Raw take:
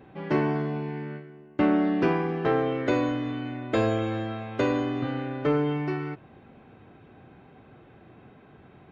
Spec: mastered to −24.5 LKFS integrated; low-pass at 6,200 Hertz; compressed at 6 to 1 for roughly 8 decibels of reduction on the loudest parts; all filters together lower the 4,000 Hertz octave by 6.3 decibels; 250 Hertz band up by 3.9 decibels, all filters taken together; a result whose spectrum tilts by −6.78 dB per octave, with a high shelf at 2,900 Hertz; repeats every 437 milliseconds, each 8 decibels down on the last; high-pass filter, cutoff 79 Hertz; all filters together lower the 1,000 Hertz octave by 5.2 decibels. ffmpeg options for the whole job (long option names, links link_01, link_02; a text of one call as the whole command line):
ffmpeg -i in.wav -af "highpass=79,lowpass=6200,equalizer=frequency=250:width_type=o:gain=5.5,equalizer=frequency=1000:width_type=o:gain=-7,highshelf=frequency=2900:gain=-3,equalizer=frequency=4000:width_type=o:gain=-5.5,acompressor=threshold=-24dB:ratio=6,aecho=1:1:437|874|1311|1748|2185:0.398|0.159|0.0637|0.0255|0.0102,volume=5dB" out.wav